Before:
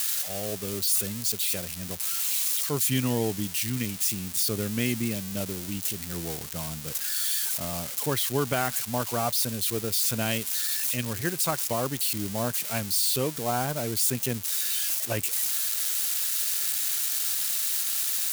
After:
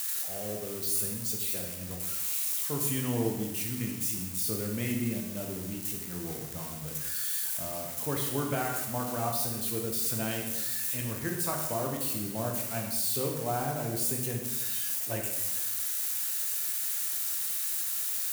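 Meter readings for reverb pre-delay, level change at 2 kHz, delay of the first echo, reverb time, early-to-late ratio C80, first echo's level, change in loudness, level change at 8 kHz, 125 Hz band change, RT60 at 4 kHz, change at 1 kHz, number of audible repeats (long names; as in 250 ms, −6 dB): 13 ms, −5.5 dB, no echo audible, 1.0 s, 6.0 dB, no echo audible, −4.0 dB, −5.0 dB, −3.0 dB, 0.95 s, −3.5 dB, no echo audible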